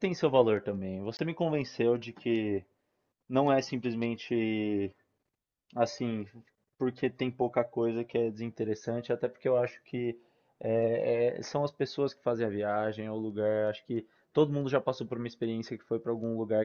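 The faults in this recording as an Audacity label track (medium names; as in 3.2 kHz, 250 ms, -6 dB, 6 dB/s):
1.170000	1.190000	dropout 19 ms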